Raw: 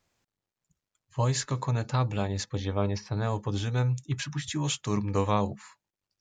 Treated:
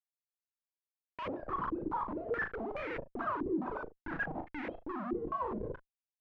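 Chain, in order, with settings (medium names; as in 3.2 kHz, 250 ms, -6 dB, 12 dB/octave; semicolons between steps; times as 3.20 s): formants replaced by sine waves; level-controlled noise filter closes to 370 Hz, open at -25 dBFS; resonant low shelf 430 Hz +8.5 dB, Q 3; reverse; compression 6:1, threshold -30 dBFS, peak gain reduction 23 dB; reverse; Schmitt trigger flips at -45.5 dBFS; distance through air 57 m; on a send: early reflections 37 ms -6.5 dB, 75 ms -18 dB; on the sum: step-sequenced low-pass 4.7 Hz 350–2100 Hz; trim -6 dB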